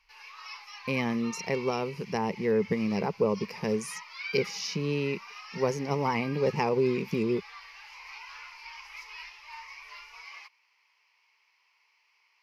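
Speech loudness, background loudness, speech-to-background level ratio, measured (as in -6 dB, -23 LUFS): -30.0 LUFS, -43.5 LUFS, 13.5 dB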